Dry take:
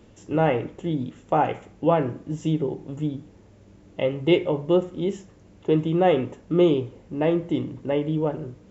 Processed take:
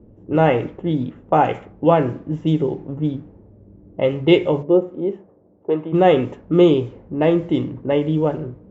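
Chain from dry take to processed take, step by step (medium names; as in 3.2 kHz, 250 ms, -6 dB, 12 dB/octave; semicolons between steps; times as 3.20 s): 4.62–5.92 s: band-pass filter 380 Hz -> 930 Hz, Q 0.91; level-controlled noise filter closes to 440 Hz, open at -18.5 dBFS; trim +5.5 dB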